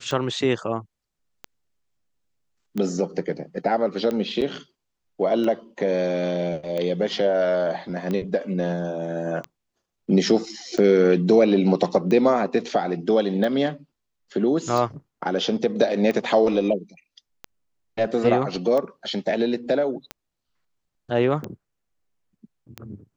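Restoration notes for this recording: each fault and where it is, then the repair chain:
scratch tick 45 rpm −16 dBFS
0:04.41–0:04.42: drop-out 7.6 ms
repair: click removal
repair the gap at 0:04.41, 7.6 ms

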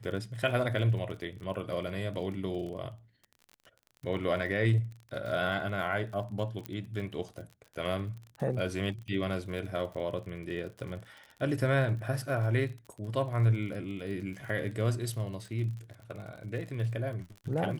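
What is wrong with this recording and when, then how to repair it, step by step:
surface crackle 41 per second −40 dBFS
0:06.66: click −20 dBFS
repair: click removal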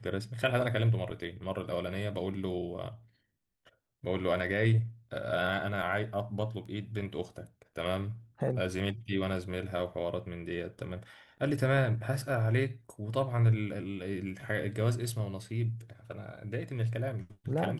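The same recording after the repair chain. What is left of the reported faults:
0:06.66: click

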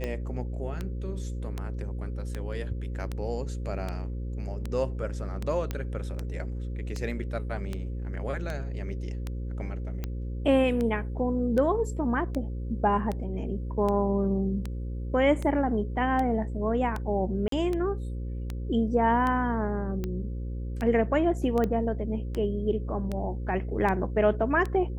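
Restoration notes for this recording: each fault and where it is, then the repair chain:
mains buzz 60 Hz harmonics 9 −33 dBFS
scratch tick 78 rpm −19 dBFS
0:05.71: click −17 dBFS
0:17.48–0:17.52: drop-out 43 ms
0:21.64: click −17 dBFS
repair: click removal
hum removal 60 Hz, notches 9
repair the gap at 0:17.48, 43 ms

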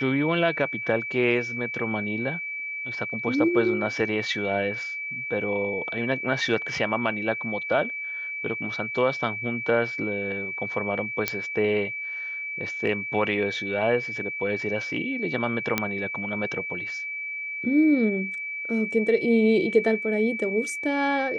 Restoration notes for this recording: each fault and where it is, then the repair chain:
whistle 2,300 Hz −30 dBFS
0:11.28: click −7 dBFS
0:15.78: click −7 dBFS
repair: click removal
notch filter 2,300 Hz, Q 30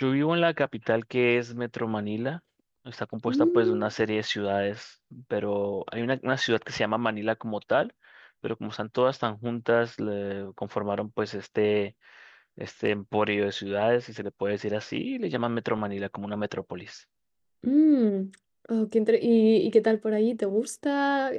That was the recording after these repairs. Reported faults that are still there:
none of them is left

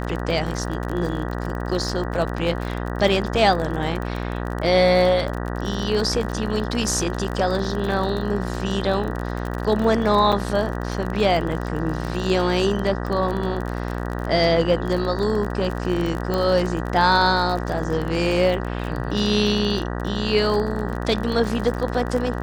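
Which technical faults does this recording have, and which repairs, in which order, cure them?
mains buzz 60 Hz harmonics 32 −27 dBFS
surface crackle 34 per second −26 dBFS
0:10.32–0:10.33: drop-out 5.9 ms
0:16.34: click −12 dBFS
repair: click removal
hum removal 60 Hz, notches 32
repair the gap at 0:10.32, 5.9 ms

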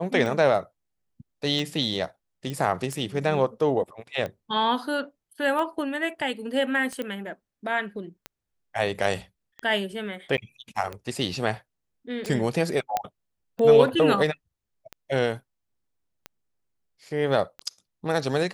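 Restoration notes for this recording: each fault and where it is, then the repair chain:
scratch tick 45 rpm
0:02.50: click −20 dBFS
0:07.02: click −19 dBFS
0:10.37–0:10.38: drop-out 9.6 ms
0:12.97: click −11 dBFS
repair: click removal
repair the gap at 0:10.37, 9.6 ms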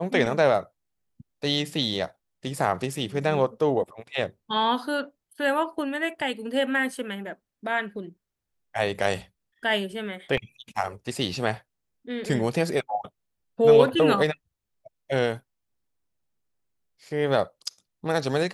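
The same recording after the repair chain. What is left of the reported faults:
none of them is left

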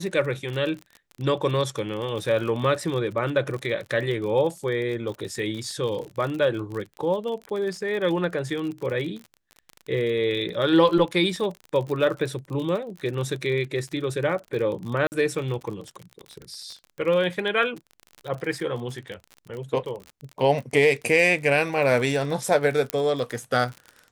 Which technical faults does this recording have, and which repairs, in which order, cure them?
surface crackle 45 per second −31 dBFS
0:15.07–0:15.12: drop-out 49 ms
0:22.90: click −10 dBFS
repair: click removal
repair the gap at 0:15.07, 49 ms

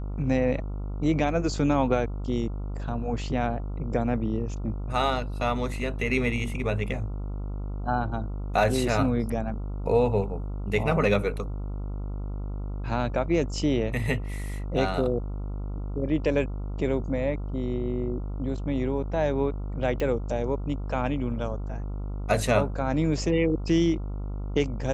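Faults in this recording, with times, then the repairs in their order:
mains buzz 50 Hz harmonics 28 −32 dBFS
0:20.00: click −18 dBFS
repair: click removal
hum removal 50 Hz, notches 28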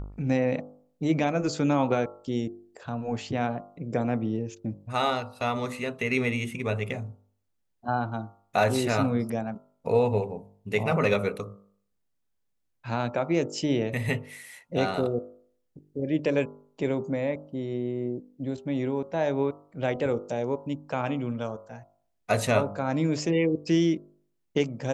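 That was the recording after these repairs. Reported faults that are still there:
none of them is left

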